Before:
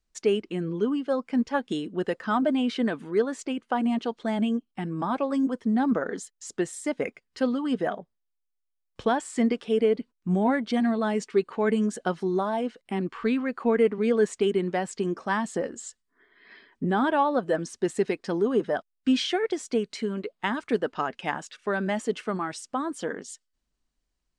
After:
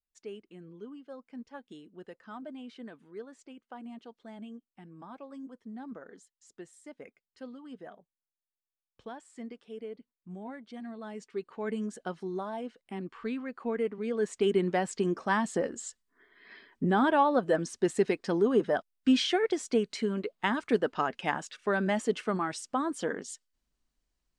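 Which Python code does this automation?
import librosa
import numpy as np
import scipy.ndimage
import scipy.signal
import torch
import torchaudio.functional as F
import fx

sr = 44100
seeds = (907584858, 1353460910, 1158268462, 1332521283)

y = fx.gain(x, sr, db=fx.line((10.72, -19.0), (11.75, -9.5), (14.11, -9.5), (14.53, -1.0)))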